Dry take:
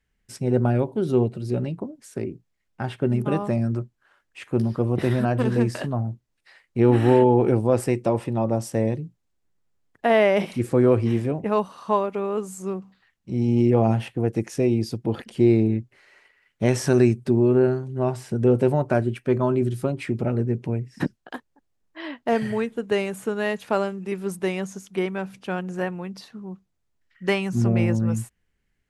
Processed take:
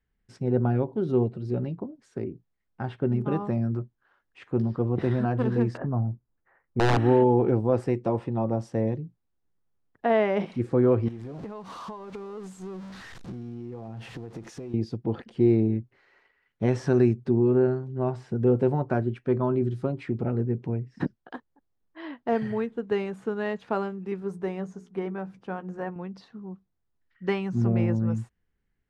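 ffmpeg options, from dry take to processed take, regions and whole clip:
-filter_complex "[0:a]asettb=1/sr,asplit=3[s0][s1][s2];[s0]atrim=end=5.774[s3];[s1]atrim=start=5.77:end=6.97,asetpts=PTS-STARTPTS,afade=t=in:d=0.004:c=qsin,afade=t=out:st=1.196:d=0.004:c=qsin,lowpass=f=1600:w=0.5412,lowpass=f=1600:w=1.3066,lowshelf=f=200:g=4,aeval=exprs='(mod(3.16*val(0)+1,2)-1)/3.16':c=same[s4];[s2]atrim=start=6.966[s5];[s3][s4]acrossfade=d=0.004:c1=hsin:c2=qsin[s6];[s6][s5]acrossfade=d=0.004:c1=qsin:c2=hsin,asettb=1/sr,asplit=3[s7][s8][s9];[s7]atrim=end=11.084[s10];[s8]atrim=start=11.08:end=14.74,asetpts=PTS-STARTPTS,afade=t=in:d=0.004:c=qsin,afade=t=out:st=3.656:d=0.004:c=qsin,aeval=exprs='val(0)+0.5*0.0237*sgn(val(0))':c=same,aemphasis=mode=production:type=cd,acompressor=threshold=0.0316:ratio=16:attack=3.2:release=140:knee=1:detection=peak[s11];[s9]atrim=start=14.736[s12];[s10][s11]acrossfade=d=0.004:c1=hsin:c2=qsin[s13];[s13][s12]acrossfade=d=0.004:c1=qsin:c2=hsin,asettb=1/sr,asplit=3[s14][s15][s16];[s14]atrim=end=24.204[s17];[s15]atrim=start=24.2:end=25.96,asetpts=PTS-STARTPTS,afade=t=in:d=0.004:c=qsin,afade=t=out:st=1.756:d=0.004:c=qsin,equalizer=f=3400:w=0.77:g=-7,bandreject=f=60:t=h:w=6,bandreject=f=120:t=h:w=6,bandreject=f=180:t=h:w=6,bandreject=f=240:t=h:w=6,bandreject=f=300:t=h:w=6,bandreject=f=360:t=h:w=6,bandreject=f=420:t=h:w=6,asplit=2[s18][s19];[s19]adelay=12,volume=0.282[s20];[s18][s20]amix=inputs=2:normalize=0,atrim=end_sample=77616[s21];[s16]atrim=start=25.956[s22];[s17][s21]acrossfade=d=0.004:c1=hsin:c2=qsin[s23];[s23][s22]acrossfade=d=0.004:c1=qsin:c2=hsin,lowpass=3400,equalizer=f=2500:w=1.3:g=-6,bandreject=f=600:w=12,volume=0.708"

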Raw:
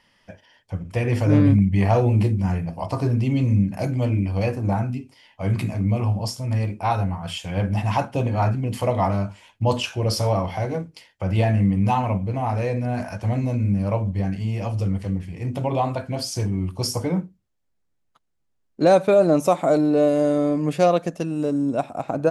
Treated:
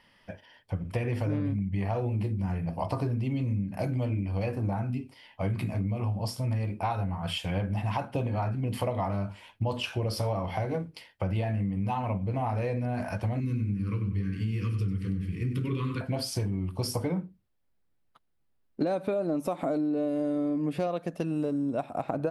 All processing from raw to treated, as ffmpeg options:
-filter_complex "[0:a]asettb=1/sr,asplit=3[s0][s1][s2];[s0]atrim=end=13.404[s3];[s1]atrim=start=13.4:end=16.01,asetpts=PTS-STARTPTS,afade=t=in:d=0.004:c=qsin,afade=t=out:st=2.606:d=0.004:c=qsin,asuperstop=centerf=710:order=8:qfactor=1,aecho=1:1:96|192|288|384:0.355|0.135|0.0512|0.0195,atrim=end_sample=115101[s4];[s2]atrim=start=16.006[s5];[s3][s4]acrossfade=d=0.004:c1=hsin:c2=qsin[s6];[s6][s5]acrossfade=d=0.004:c1=qsin:c2=hsin,asettb=1/sr,asplit=3[s7][s8][s9];[s7]atrim=end=18.824[s10];[s8]atrim=start=18.82:end=20.87,asetpts=PTS-STARTPTS,afade=t=in:d=0.004:c=qsin,afade=t=out:st=2.046:d=0.004:c=qsin,equalizer=f=270:w=2.4:g=7.5,acompressor=mode=upward:threshold=0.141:ratio=2.5:attack=3.2:release=140:knee=2.83:detection=peak[s11];[s9]atrim=start=20.866[s12];[s10][s11]acrossfade=d=0.004:c1=hsin:c2=qsin[s13];[s13][s12]acrossfade=d=0.004:c1=qsin:c2=hsin,equalizer=f=6700:w=2:g=-10,acompressor=threshold=0.0501:ratio=10"

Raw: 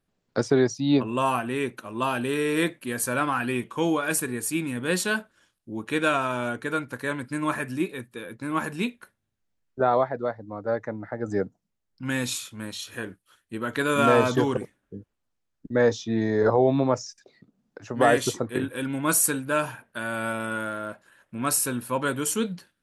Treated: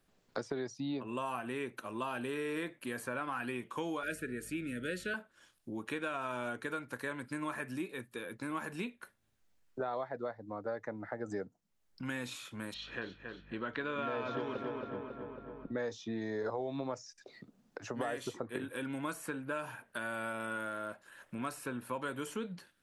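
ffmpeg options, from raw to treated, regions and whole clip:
-filter_complex "[0:a]asettb=1/sr,asplit=3[s0][s1][s2];[s0]atrim=end=4.034[s3];[s1]atrim=start=4.03:end=5.14,asetpts=PTS-STARTPTS,afade=t=in:d=0.004:c=qsin,afade=t=out:st=1.106:d=0.004:c=qsin,aeval=exprs='val(0)+0.00631*(sin(2*PI*50*n/s)+sin(2*PI*2*50*n/s)/2+sin(2*PI*3*50*n/s)/3+sin(2*PI*4*50*n/s)/4+sin(2*PI*5*50*n/s)/5)':c=same,asuperstop=centerf=910:order=20:qfactor=1.5[s4];[s2]atrim=start=5.136[s5];[s3][s4]acrossfade=d=0.004:c1=hsin:c2=qsin[s6];[s6][s5]acrossfade=d=0.004:c1=qsin:c2=hsin,asettb=1/sr,asplit=3[s7][s8][s9];[s7]atrim=end=12.744[s10];[s8]atrim=start=12.74:end=15.78,asetpts=PTS-STARTPTS,afade=t=in:d=0.004:c=qsin,afade=t=out:st=3.036:d=0.004:c=qsin,lowpass=f=4400:w=0.5412,lowpass=f=4400:w=1.3066,aeval=exprs='val(0)+0.002*(sin(2*PI*50*n/s)+sin(2*PI*2*50*n/s)/2+sin(2*PI*3*50*n/s)/3+sin(2*PI*4*50*n/s)/4+sin(2*PI*5*50*n/s)/5)':c=same,asplit=2[s11][s12];[s12]adelay=274,lowpass=f=3100:p=1,volume=0.355,asplit=2[s13][s14];[s14]adelay=274,lowpass=f=3100:p=1,volume=0.49,asplit=2[s15][s16];[s16]adelay=274,lowpass=f=3100:p=1,volume=0.49,asplit=2[s17][s18];[s18]adelay=274,lowpass=f=3100:p=1,volume=0.49,asplit=2[s19][s20];[s20]adelay=274,lowpass=f=3100:p=1,volume=0.49,asplit=2[s21][s22];[s22]adelay=274,lowpass=f=3100:p=1,volume=0.49[s23];[s11][s13][s15][s17][s19][s21][s23]amix=inputs=7:normalize=0,atrim=end_sample=134064[s24];[s9]atrim=start=15.776[s25];[s10][s24]acrossfade=d=0.004:c1=hsin:c2=qsin[s26];[s26][s25]acrossfade=d=0.004:c1=qsin:c2=hsin,acrossover=split=83|2900[s27][s28][s29];[s27]acompressor=threshold=0.00126:ratio=4[s30];[s28]acompressor=threshold=0.0631:ratio=4[s31];[s29]acompressor=threshold=0.00447:ratio=4[s32];[s30][s31][s32]amix=inputs=3:normalize=0,equalizer=f=110:w=0.41:g=-5,acompressor=threshold=0.00224:ratio=2,volume=2"

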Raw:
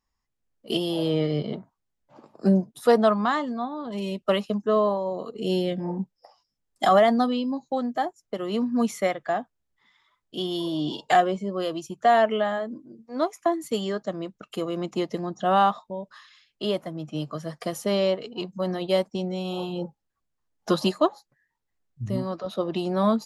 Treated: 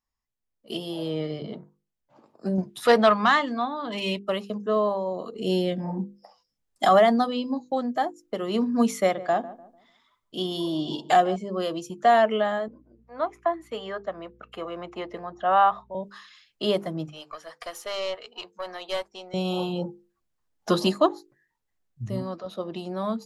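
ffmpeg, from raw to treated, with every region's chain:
-filter_complex "[0:a]asettb=1/sr,asplit=3[s0][s1][s2];[s0]atrim=end=2.584[s3];[s1]atrim=start=2.58:end=4.19,asetpts=PTS-STARTPTS,afade=t=in:d=0.004:c=qsin,afade=t=out:st=1.606:d=0.004:c=qsin,equalizer=f=2400:t=o:w=2.2:g=11,acontrast=53[s4];[s2]atrim=start=4.186[s5];[s3][s4]acrossfade=d=0.004:c1=hsin:c2=qsin[s6];[s6][s5]acrossfade=d=0.004:c1=qsin:c2=hsin,asettb=1/sr,asplit=3[s7][s8][s9];[s7]atrim=end=9.014[s10];[s8]atrim=start=9.01:end=11.36,asetpts=PTS-STARTPTS,afade=t=in:d=0.004:c=qsin,afade=t=out:st=2.346:d=0.004:c=qsin,equalizer=f=1900:w=1.9:g=-4,asplit=2[s11][s12];[s12]adelay=148,lowpass=f=990:p=1,volume=0.178,asplit=2[s13][s14];[s14]adelay=148,lowpass=f=990:p=1,volume=0.39,asplit=2[s15][s16];[s16]adelay=148,lowpass=f=990:p=1,volume=0.39,asplit=2[s17][s18];[s18]adelay=148,lowpass=f=990:p=1,volume=0.39[s19];[s11][s13][s15][s17][s19]amix=inputs=5:normalize=0,atrim=end_sample=103635[s20];[s9]atrim=start=11.356[s21];[s10][s20]acrossfade=d=0.004:c1=hsin:c2=qsin[s22];[s22][s21]acrossfade=d=0.004:c1=qsin:c2=hsin,asettb=1/sr,asplit=3[s23][s24][s25];[s23]atrim=end=12.684[s26];[s24]atrim=start=12.68:end=15.95,asetpts=PTS-STARTPTS,afade=t=in:d=0.004:c=qsin,afade=t=out:st=3.266:d=0.004:c=qsin,acrossover=split=540 2700:gain=0.178 1 0.1[s27][s28][s29];[s27][s28][s29]amix=inputs=3:normalize=0,aeval=exprs='val(0)+0.000891*(sin(2*PI*60*n/s)+sin(2*PI*2*60*n/s)/2+sin(2*PI*3*60*n/s)/3+sin(2*PI*4*60*n/s)/4+sin(2*PI*5*60*n/s)/5)':c=same[s30];[s25]atrim=start=15.946[s31];[s26][s30]acrossfade=d=0.004:c1=hsin:c2=qsin[s32];[s32][s31]acrossfade=d=0.004:c1=qsin:c2=hsin,asettb=1/sr,asplit=3[s33][s34][s35];[s33]atrim=end=17.084[s36];[s34]atrim=start=17.08:end=19.34,asetpts=PTS-STARTPTS,afade=t=in:d=0.004:c=qsin,afade=t=out:st=2.256:d=0.004:c=qsin,highpass=910,highshelf=f=4000:g=-8,aeval=exprs='(tanh(17.8*val(0)+0.5)-tanh(0.5))/17.8':c=same[s37];[s35]atrim=start=19.336[s38];[s36][s37]acrossfade=d=0.004:c1=hsin:c2=qsin[s39];[s39][s38]acrossfade=d=0.004:c1=qsin:c2=hsin,bandreject=f=50:t=h:w=6,bandreject=f=100:t=h:w=6,bandreject=f=150:t=h:w=6,bandreject=f=200:t=h:w=6,bandreject=f=250:t=h:w=6,bandreject=f=300:t=h:w=6,bandreject=f=350:t=h:w=6,bandreject=f=400:t=h:w=6,bandreject=f=450:t=h:w=6,bandreject=f=500:t=h:w=6,dynaudnorm=f=210:g=13:m=3.76,volume=0.473"

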